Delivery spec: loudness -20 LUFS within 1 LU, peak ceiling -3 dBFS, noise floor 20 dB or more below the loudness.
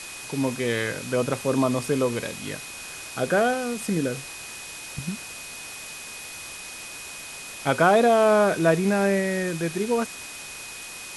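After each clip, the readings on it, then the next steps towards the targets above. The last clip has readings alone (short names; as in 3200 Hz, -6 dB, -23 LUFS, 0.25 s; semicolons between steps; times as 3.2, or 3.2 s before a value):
steady tone 2500 Hz; tone level -41 dBFS; noise floor -39 dBFS; noise floor target -44 dBFS; loudness -24.0 LUFS; peak -6.5 dBFS; loudness target -20.0 LUFS
-> notch 2500 Hz, Q 30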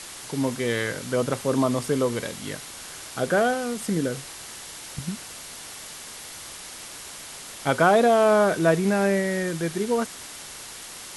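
steady tone none; noise floor -40 dBFS; noise floor target -44 dBFS
-> noise print and reduce 6 dB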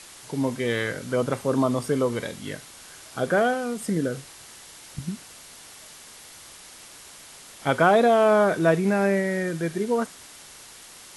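noise floor -46 dBFS; loudness -23.5 LUFS; peak -7.0 dBFS; loudness target -20.0 LUFS
-> gain +3.5 dB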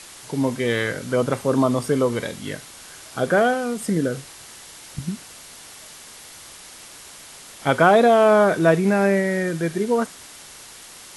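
loudness -20.0 LUFS; peak -3.5 dBFS; noise floor -43 dBFS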